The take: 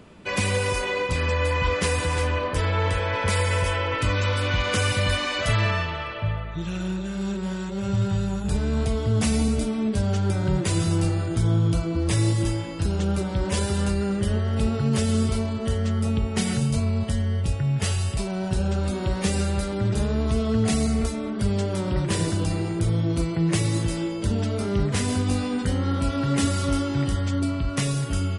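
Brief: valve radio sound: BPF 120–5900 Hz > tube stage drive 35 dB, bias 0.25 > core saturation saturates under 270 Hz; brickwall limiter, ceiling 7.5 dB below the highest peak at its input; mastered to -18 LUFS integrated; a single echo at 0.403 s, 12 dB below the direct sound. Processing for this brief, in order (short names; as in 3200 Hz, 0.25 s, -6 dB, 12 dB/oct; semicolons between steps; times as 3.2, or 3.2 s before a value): limiter -18 dBFS; BPF 120–5900 Hz; echo 0.403 s -12 dB; tube stage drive 35 dB, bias 0.25; core saturation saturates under 270 Hz; gain +22.5 dB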